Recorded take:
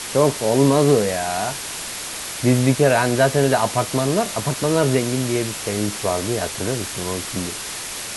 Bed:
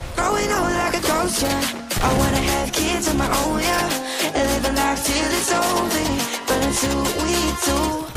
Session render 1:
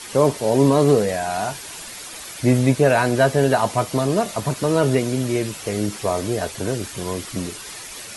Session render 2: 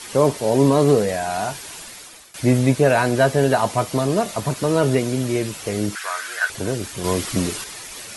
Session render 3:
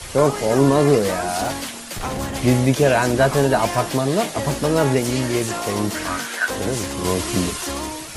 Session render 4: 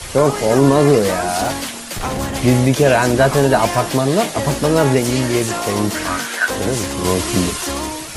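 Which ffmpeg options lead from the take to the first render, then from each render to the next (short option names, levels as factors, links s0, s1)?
-af "afftdn=nr=9:nf=-31"
-filter_complex "[0:a]asettb=1/sr,asplit=3[s0][s1][s2];[s0]atrim=end=5.954[s3];[s1]atrim=start=5.95:end=6.5,asetpts=PTS-STARTPTS,afade=t=in:d=0.004:c=qsin,afade=t=out:st=0.546:d=0.004:c=qsin,highpass=f=1500:t=q:w=7.4[s4];[s2]atrim=start=6.496[s5];[s3][s4]acrossfade=d=0.004:c1=hsin:c2=qsin[s6];[s6][s5]acrossfade=d=0.004:c1=qsin:c2=hsin,asplit=4[s7][s8][s9][s10];[s7]atrim=end=2.34,asetpts=PTS-STARTPTS,afade=t=out:st=1.5:d=0.84:c=qsin:silence=0.125893[s11];[s8]atrim=start=2.34:end=7.042,asetpts=PTS-STARTPTS,afade=t=in:d=0.004:c=hsin:silence=0.125893[s12];[s9]atrim=start=7.038:end=7.642,asetpts=PTS-STARTPTS,volume=1.88[s13];[s10]atrim=start=7.638[s14];[s11][s12]concat=n=2:v=0:a=1[s15];[s15][s13]acrossfade=d=0.004:c1=hsin:c2=hsin[s16];[s16][s14]acrossfade=d=0.004:c1=hsin:c2=hsin"
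-filter_complex "[1:a]volume=0.398[s0];[0:a][s0]amix=inputs=2:normalize=0"
-af "volume=1.58,alimiter=limit=0.794:level=0:latency=1"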